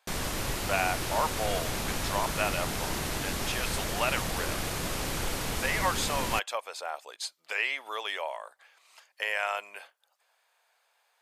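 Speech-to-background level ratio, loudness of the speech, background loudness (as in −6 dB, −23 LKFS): −0.5 dB, −33.0 LKFS, −32.5 LKFS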